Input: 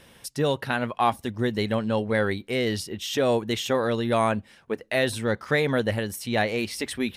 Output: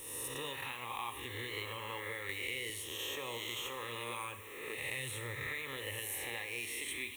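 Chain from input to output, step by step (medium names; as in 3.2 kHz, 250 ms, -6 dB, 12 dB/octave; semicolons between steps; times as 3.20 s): reverse spectral sustain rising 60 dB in 1.24 s; amplifier tone stack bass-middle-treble 5-5-5; harmonic-percussive split harmonic -4 dB; 4.77–5.47 s: peaking EQ 130 Hz +12.5 dB 0.84 oct; compression, threshold -39 dBFS, peak gain reduction 9.5 dB; word length cut 10-bit, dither triangular; static phaser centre 1 kHz, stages 8; Schroeder reverb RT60 0.9 s, combs from 30 ms, DRR 8 dB; 2.29–2.70 s: three bands compressed up and down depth 70%; trim +5 dB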